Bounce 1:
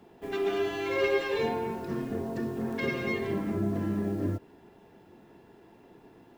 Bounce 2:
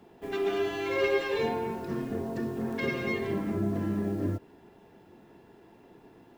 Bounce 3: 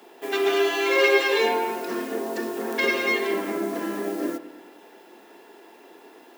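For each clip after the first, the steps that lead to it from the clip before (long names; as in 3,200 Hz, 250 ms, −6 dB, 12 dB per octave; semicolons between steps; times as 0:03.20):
no processing that can be heard
high-pass filter 280 Hz 24 dB per octave; spectral tilt +2 dB per octave; bucket-brigade delay 106 ms, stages 2,048, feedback 61%, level −14.5 dB; level +9 dB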